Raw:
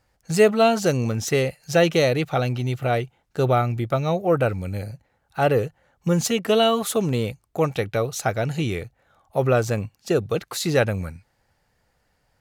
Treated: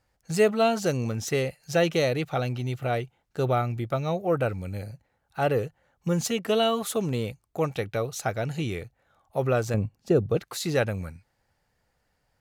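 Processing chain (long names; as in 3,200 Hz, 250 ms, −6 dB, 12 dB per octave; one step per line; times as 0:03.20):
0:09.74–0:10.37: tilt shelving filter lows +7 dB, about 890 Hz
level −5 dB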